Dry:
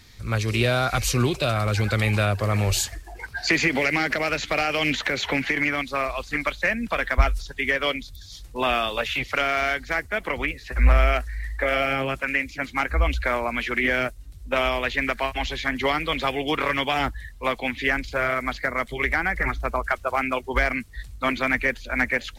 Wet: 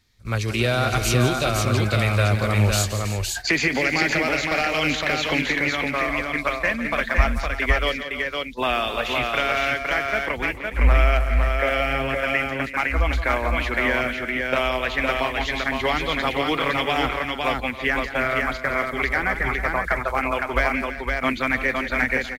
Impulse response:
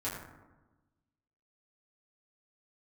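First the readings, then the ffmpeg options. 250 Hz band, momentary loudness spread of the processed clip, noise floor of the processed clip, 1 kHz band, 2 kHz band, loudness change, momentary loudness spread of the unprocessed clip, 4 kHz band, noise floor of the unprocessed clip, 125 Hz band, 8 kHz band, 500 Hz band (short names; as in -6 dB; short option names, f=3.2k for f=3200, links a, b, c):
+2.0 dB, 4 LU, -33 dBFS, +2.0 dB, +2.0 dB, +2.0 dB, 6 LU, +2.0 dB, -43 dBFS, +2.5 dB, +2.0 dB, +2.0 dB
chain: -af "agate=range=-15dB:threshold=-31dB:ratio=16:detection=peak,aecho=1:1:171|270|322|512:0.266|0.119|0.211|0.668"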